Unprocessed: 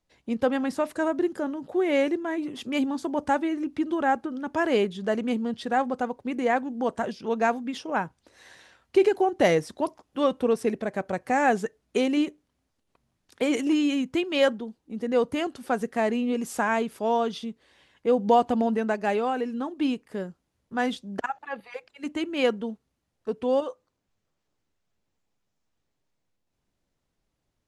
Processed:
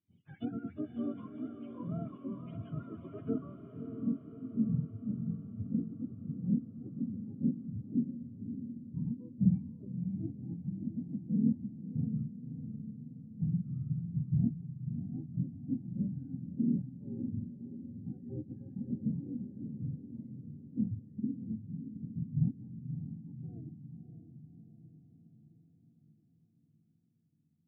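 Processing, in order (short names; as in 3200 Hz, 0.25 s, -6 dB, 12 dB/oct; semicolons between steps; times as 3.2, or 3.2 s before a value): spectrum mirrored in octaves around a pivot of 610 Hz; vocal tract filter i; low-pass sweep 3400 Hz -> 180 Hz, 3.02–3.96; on a send: diffused feedback echo 0.594 s, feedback 57%, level -8 dB; on the sum: gain +2 dB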